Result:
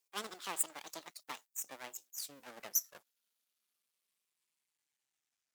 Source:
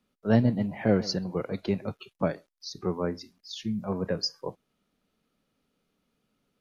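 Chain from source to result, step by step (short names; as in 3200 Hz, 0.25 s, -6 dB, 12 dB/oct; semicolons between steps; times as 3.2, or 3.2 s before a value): speed glide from 188% -> 50%; half-wave rectifier; differentiator; gain +4 dB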